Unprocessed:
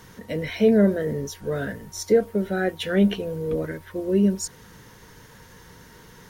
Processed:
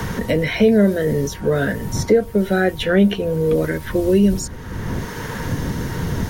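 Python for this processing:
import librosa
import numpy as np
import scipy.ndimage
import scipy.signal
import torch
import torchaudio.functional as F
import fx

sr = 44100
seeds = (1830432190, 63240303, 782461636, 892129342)

y = fx.dmg_wind(x, sr, seeds[0], corner_hz=100.0, level_db=-38.0)
y = fx.band_squash(y, sr, depth_pct=70)
y = y * librosa.db_to_amplitude(6.5)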